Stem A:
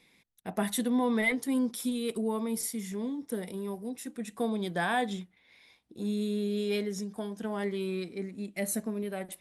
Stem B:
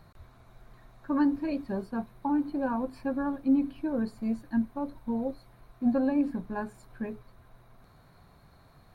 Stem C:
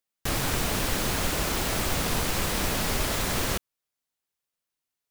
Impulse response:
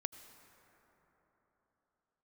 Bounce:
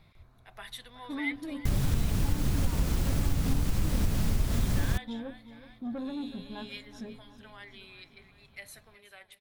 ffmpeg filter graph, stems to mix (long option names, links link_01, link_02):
-filter_complex "[0:a]highpass=1400,highshelf=frequency=5400:width_type=q:width=1.5:gain=-9.5,volume=-5.5dB,asplit=2[link_01][link_02];[link_02]volume=-16dB[link_03];[1:a]asoftclip=type=tanh:threshold=-26.5dB,volume=-8.5dB,asplit=2[link_04][link_05];[link_05]volume=-14dB[link_06];[2:a]bass=frequency=250:gain=14,treble=frequency=4000:gain=2,adelay=1400,volume=-9.5dB[link_07];[link_03][link_06]amix=inputs=2:normalize=0,aecho=0:1:371|742|1113|1484|1855|2226|2597|2968:1|0.55|0.303|0.166|0.0915|0.0503|0.0277|0.0152[link_08];[link_01][link_04][link_07][link_08]amix=inputs=4:normalize=0,lowshelf=frequency=350:gain=5,acompressor=threshold=-23dB:ratio=3"